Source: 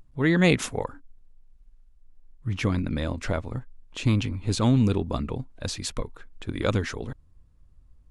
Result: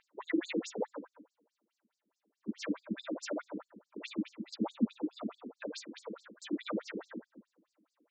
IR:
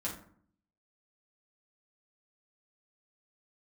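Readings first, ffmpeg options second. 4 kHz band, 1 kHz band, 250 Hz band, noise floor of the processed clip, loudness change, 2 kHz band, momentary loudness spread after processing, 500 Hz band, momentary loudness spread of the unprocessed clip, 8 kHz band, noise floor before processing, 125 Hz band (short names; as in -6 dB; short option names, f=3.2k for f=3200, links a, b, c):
-13.0 dB, -12.0 dB, -10.0 dB, under -85 dBFS, -13.0 dB, -14.0 dB, 14 LU, -11.5 dB, 17 LU, -14.5 dB, -57 dBFS, -26.0 dB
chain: -filter_complex "[1:a]atrim=start_sample=2205[a];[0:a][a]afir=irnorm=-1:irlink=0,acompressor=threshold=-37dB:ratio=2.5,afftfilt=real='re*between(b*sr/1024,290*pow(6100/290,0.5+0.5*sin(2*PI*4.7*pts/sr))/1.41,290*pow(6100/290,0.5+0.5*sin(2*PI*4.7*pts/sr))*1.41)':imag='im*between(b*sr/1024,290*pow(6100/290,0.5+0.5*sin(2*PI*4.7*pts/sr))/1.41,290*pow(6100/290,0.5+0.5*sin(2*PI*4.7*pts/sr))*1.41)':win_size=1024:overlap=0.75,volume=7.5dB"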